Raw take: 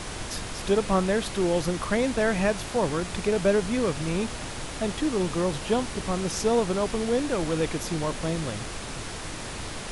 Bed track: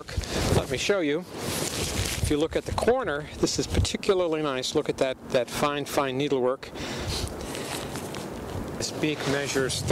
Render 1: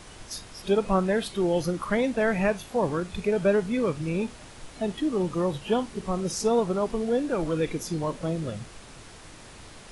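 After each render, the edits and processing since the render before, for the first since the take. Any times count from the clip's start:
noise reduction from a noise print 11 dB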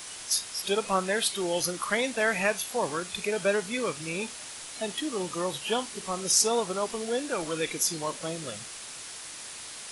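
spectral tilt +4 dB per octave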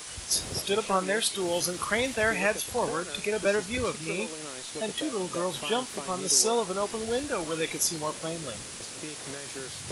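mix in bed track −15 dB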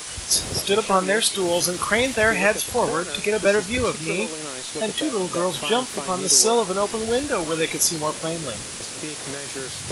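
level +7 dB
brickwall limiter −1 dBFS, peak gain reduction 1 dB

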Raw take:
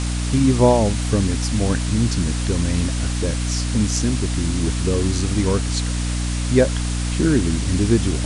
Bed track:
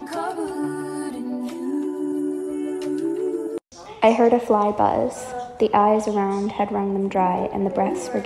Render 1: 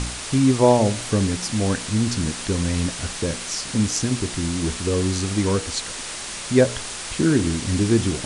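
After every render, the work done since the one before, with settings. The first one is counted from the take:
hum removal 60 Hz, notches 12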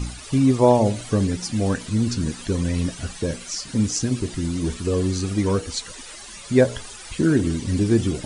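broadband denoise 14 dB, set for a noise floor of −32 dBFS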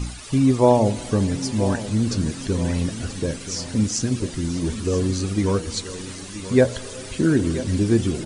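repeating echo 980 ms, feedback 42%, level −13.5 dB
comb and all-pass reverb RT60 4.9 s, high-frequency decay 0.8×, pre-delay 75 ms, DRR 18 dB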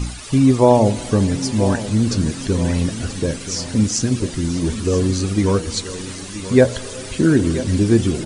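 level +4 dB
brickwall limiter −1 dBFS, peak gain reduction 1.5 dB

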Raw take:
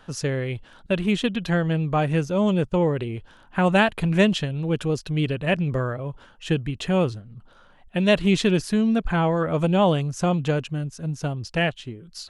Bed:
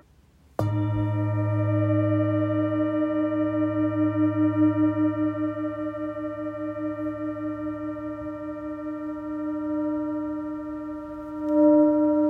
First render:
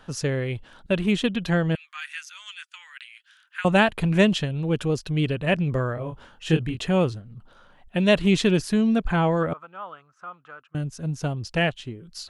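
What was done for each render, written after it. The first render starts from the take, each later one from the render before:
0:01.75–0:03.65: Butterworth high-pass 1,500 Hz
0:05.94–0:06.79: double-tracking delay 25 ms −4.5 dB
0:09.53–0:10.75: resonant band-pass 1,300 Hz, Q 8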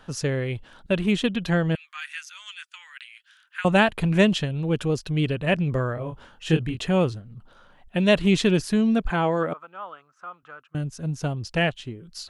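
0:09.10–0:10.43: high-pass filter 200 Hz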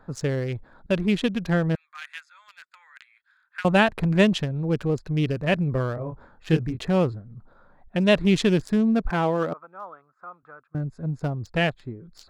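adaptive Wiener filter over 15 samples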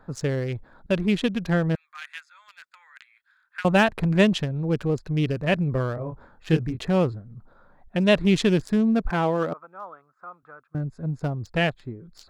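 gain into a clipping stage and back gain 8.5 dB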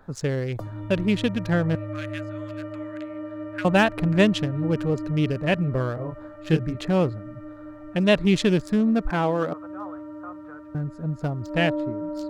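mix in bed −10 dB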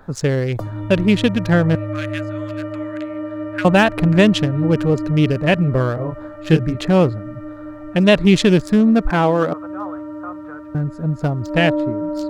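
level +7.5 dB
brickwall limiter −3 dBFS, peak gain reduction 3 dB

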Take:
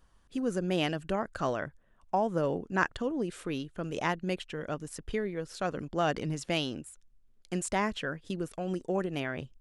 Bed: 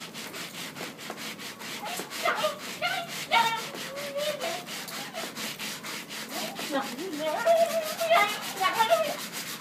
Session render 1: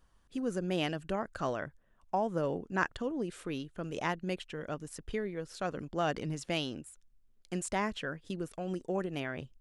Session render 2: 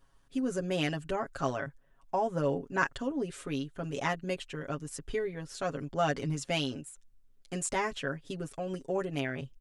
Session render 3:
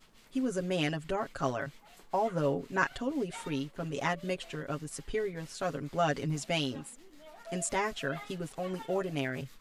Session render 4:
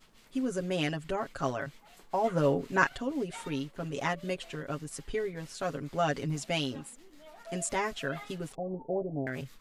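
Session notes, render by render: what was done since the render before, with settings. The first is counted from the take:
level −3 dB
comb filter 7.3 ms, depth 80%; dynamic equaliser 7,300 Hz, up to +4 dB, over −59 dBFS, Q 1.8
mix in bed −23 dB
0:02.24–0:02.89: clip gain +3.5 dB; 0:08.55–0:09.27: Butterworth low-pass 830 Hz 48 dB per octave

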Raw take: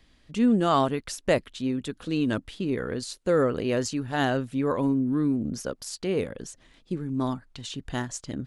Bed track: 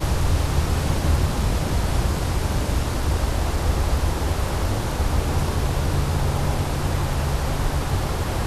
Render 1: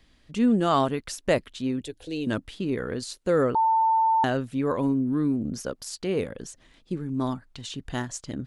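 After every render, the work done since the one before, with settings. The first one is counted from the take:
0:01.81–0:02.27: phaser with its sweep stopped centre 510 Hz, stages 4
0:03.55–0:04.24: beep over 894 Hz −18 dBFS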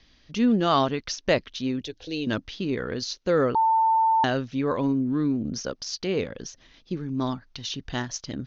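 Butterworth low-pass 6,300 Hz 96 dB per octave
high-shelf EQ 3,300 Hz +10 dB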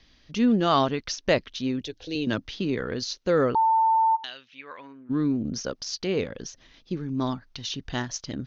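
0:02.15–0:02.81: multiband upward and downward compressor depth 40%
0:04.15–0:05.09: resonant band-pass 4,100 Hz → 1,400 Hz, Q 2.4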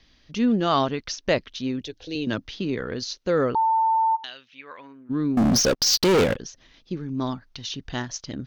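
0:05.37–0:06.36: leveller curve on the samples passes 5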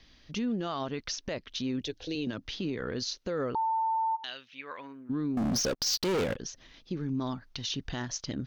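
downward compressor 12 to 1, threshold −27 dBFS, peak gain reduction 12 dB
brickwall limiter −24 dBFS, peak gain reduction 8 dB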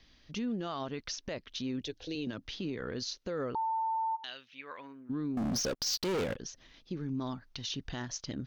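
level −3.5 dB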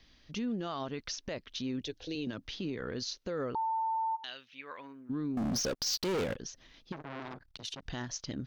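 0:06.92–0:07.86: saturating transformer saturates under 1,400 Hz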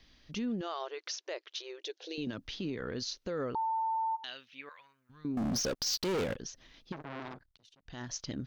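0:00.61–0:02.18: linear-phase brick-wall band-pass 320–7,500 Hz
0:04.69–0:05.25: guitar amp tone stack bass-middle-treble 10-0-10
0:07.28–0:08.12: duck −21.5 dB, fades 0.30 s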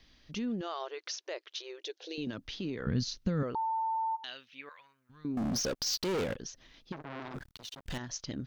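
0:02.86–0:03.43: low shelf with overshoot 270 Hz +12.5 dB, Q 1.5
0:07.34–0:07.98: leveller curve on the samples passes 5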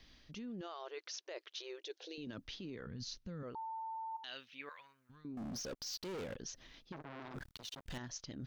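brickwall limiter −30 dBFS, peak gain reduction 10.5 dB
reversed playback
downward compressor, threshold −43 dBFS, peak gain reduction 10.5 dB
reversed playback

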